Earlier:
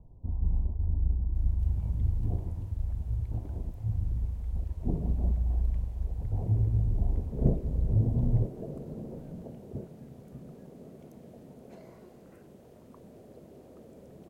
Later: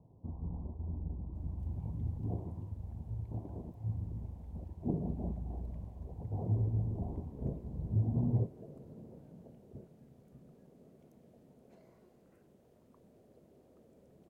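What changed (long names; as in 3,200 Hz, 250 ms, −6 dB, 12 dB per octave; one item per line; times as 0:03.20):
speech: add high-pass filter 130 Hz 12 dB per octave
background −11.5 dB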